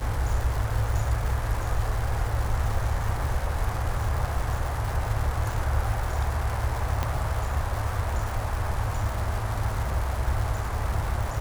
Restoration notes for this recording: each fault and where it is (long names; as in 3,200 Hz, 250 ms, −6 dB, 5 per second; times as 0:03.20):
surface crackle 400 per second −31 dBFS
0:07.03: click −13 dBFS